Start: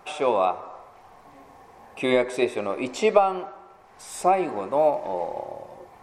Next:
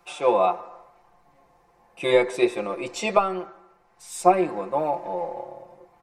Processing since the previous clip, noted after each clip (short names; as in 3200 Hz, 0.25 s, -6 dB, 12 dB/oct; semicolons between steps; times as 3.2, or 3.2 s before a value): notch 3300 Hz, Q 29; comb 5.8 ms, depth 81%; three-band expander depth 40%; gain -2 dB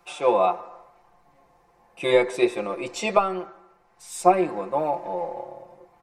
nothing audible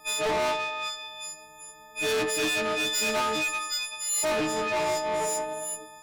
frequency quantiser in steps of 6 st; delay with a stepping band-pass 0.382 s, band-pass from 2600 Hz, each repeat 0.7 oct, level -1.5 dB; tube stage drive 28 dB, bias 0.25; gain +3.5 dB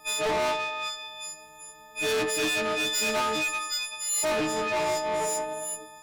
crackle 560/s -58 dBFS